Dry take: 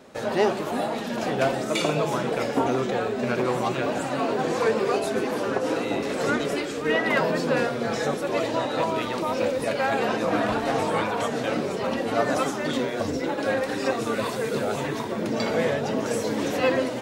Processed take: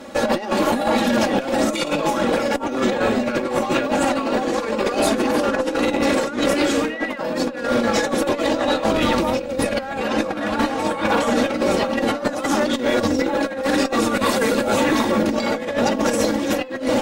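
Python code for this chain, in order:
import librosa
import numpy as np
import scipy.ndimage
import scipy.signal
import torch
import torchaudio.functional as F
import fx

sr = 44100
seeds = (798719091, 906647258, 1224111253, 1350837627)

y = fx.octave_divider(x, sr, octaves=1, level_db=-1.0, at=(8.91, 10.01))
y = y + 0.73 * np.pad(y, (int(3.6 * sr / 1000.0), 0))[:len(y)]
y = fx.over_compress(y, sr, threshold_db=-26.0, ratio=-0.5)
y = fx.tube_stage(y, sr, drive_db=16.0, bias=0.45)
y = y * 10.0 ** (8.5 / 20.0)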